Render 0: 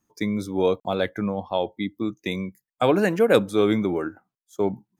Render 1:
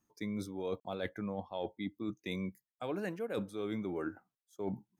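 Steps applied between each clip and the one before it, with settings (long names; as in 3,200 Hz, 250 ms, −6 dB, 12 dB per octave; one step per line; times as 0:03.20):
notch filter 7,100 Hz, Q 14
reversed playback
downward compressor 12 to 1, threshold −29 dBFS, peak gain reduction 17 dB
reversed playback
level −5 dB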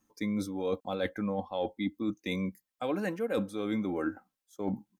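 comb filter 3.8 ms, depth 46%
level +5 dB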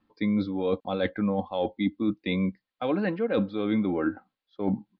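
dynamic equaliser 170 Hz, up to +3 dB, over −39 dBFS, Q 0.71
Butterworth low-pass 4,600 Hz 72 dB per octave
level +4 dB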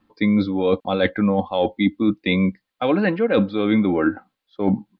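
dynamic equaliser 2,300 Hz, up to +3 dB, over −47 dBFS, Q 1
level +7.5 dB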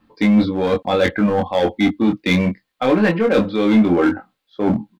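in parallel at −6 dB: wave folding −17 dBFS
on the sum: double-tracking delay 23 ms −3.5 dB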